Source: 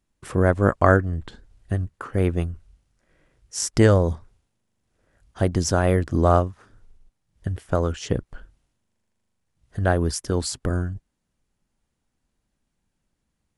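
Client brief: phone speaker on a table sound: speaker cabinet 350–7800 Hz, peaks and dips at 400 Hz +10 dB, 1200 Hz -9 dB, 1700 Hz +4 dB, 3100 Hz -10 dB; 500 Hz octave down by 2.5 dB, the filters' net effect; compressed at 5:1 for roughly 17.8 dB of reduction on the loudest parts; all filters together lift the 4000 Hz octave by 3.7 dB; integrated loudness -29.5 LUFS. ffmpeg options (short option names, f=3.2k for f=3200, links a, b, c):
-af "equalizer=f=500:t=o:g=-7.5,equalizer=f=4k:t=o:g=7.5,acompressor=threshold=-33dB:ratio=5,highpass=f=350:w=0.5412,highpass=f=350:w=1.3066,equalizer=f=400:t=q:w=4:g=10,equalizer=f=1.2k:t=q:w=4:g=-9,equalizer=f=1.7k:t=q:w=4:g=4,equalizer=f=3.1k:t=q:w=4:g=-10,lowpass=f=7.8k:w=0.5412,lowpass=f=7.8k:w=1.3066,volume=11dB"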